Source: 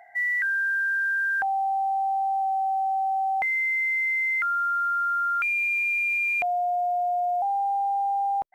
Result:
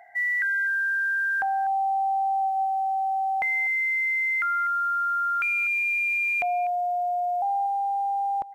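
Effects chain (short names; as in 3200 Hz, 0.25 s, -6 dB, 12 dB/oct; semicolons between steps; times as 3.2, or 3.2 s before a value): echo 0.247 s -17 dB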